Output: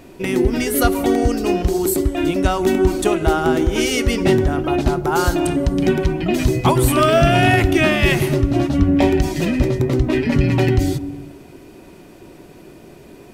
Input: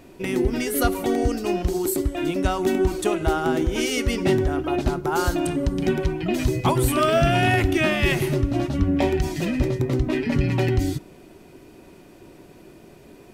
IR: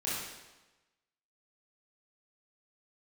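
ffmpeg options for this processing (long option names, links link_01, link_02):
-filter_complex "[0:a]asplit=2[link_01][link_02];[link_02]lowpass=1000[link_03];[1:a]atrim=start_sample=2205,adelay=142[link_04];[link_03][link_04]afir=irnorm=-1:irlink=0,volume=-19dB[link_05];[link_01][link_05]amix=inputs=2:normalize=0,volume=5dB"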